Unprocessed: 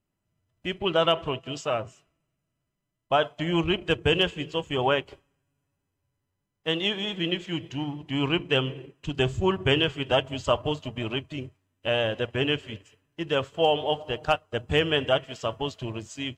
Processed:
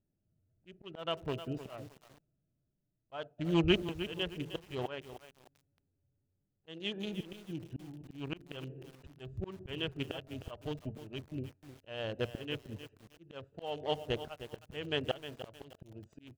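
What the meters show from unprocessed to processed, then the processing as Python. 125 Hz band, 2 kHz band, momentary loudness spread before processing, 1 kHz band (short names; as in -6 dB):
-9.5 dB, -14.5 dB, 11 LU, -16.0 dB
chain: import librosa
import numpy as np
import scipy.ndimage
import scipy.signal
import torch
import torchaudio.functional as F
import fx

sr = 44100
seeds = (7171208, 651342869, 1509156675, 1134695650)

y = fx.wiener(x, sr, points=41)
y = fx.auto_swell(y, sr, attack_ms=640.0)
y = fx.echo_crushed(y, sr, ms=309, feedback_pct=35, bits=8, wet_db=-11)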